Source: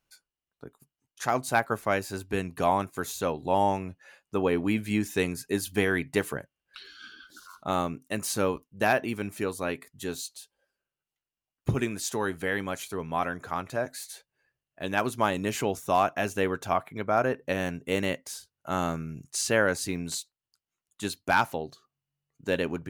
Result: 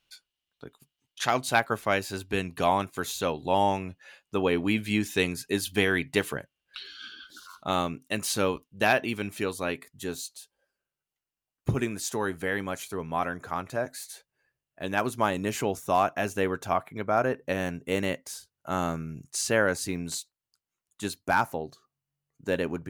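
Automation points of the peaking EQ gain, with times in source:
peaking EQ 3.3 kHz 1.1 oct
1.24 s +13.5 dB
1.67 s +7 dB
9.47 s +7 dB
10.13 s -1.5 dB
21.05 s -1.5 dB
21.50 s -10 dB
21.64 s -4 dB

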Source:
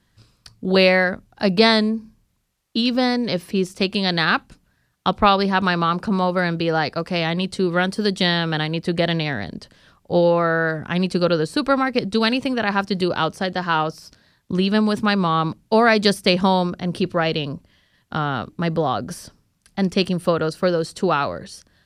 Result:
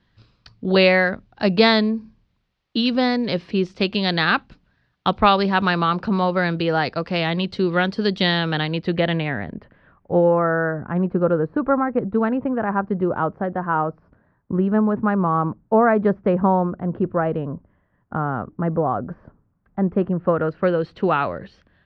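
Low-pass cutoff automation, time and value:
low-pass 24 dB/octave
8.73 s 4.4 kHz
9.40 s 2.3 kHz
10.90 s 1.4 kHz
20.11 s 1.4 kHz
20.79 s 2.9 kHz

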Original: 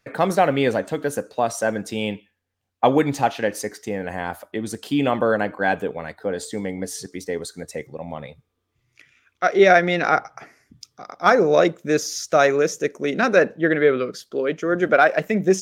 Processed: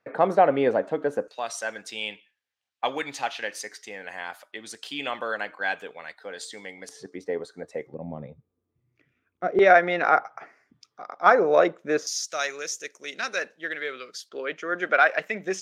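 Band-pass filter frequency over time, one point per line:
band-pass filter, Q 0.69
650 Hz
from 1.28 s 3.3 kHz
from 6.89 s 740 Hz
from 7.94 s 220 Hz
from 9.59 s 1 kHz
from 12.07 s 5.5 kHz
from 14.29 s 2.1 kHz

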